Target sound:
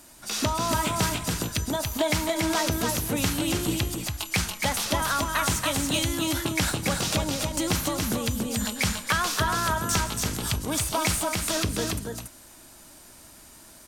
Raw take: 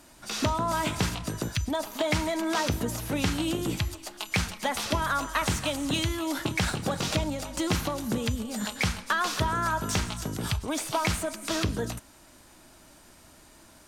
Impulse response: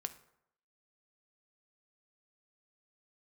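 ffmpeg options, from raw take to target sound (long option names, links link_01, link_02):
-filter_complex "[0:a]highshelf=frequency=6500:gain=10,asplit=2[link_01][link_02];[link_02]aecho=0:1:283:0.631[link_03];[link_01][link_03]amix=inputs=2:normalize=0"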